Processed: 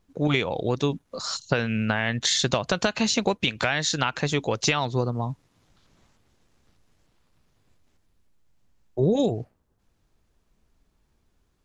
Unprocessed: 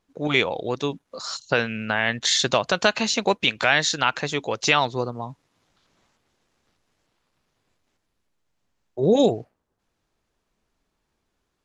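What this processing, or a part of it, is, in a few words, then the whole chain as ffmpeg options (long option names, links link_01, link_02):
ASMR close-microphone chain: -af "lowshelf=frequency=130:gain=5.5,acompressor=threshold=-21dB:ratio=5,lowshelf=frequency=260:gain=7,highshelf=frequency=7700:gain=4.5"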